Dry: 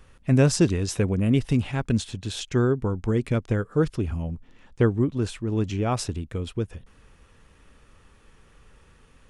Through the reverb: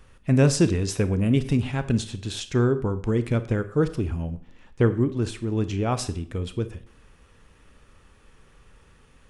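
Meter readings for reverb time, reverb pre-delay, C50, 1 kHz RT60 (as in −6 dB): 0.55 s, 26 ms, 14.5 dB, 0.55 s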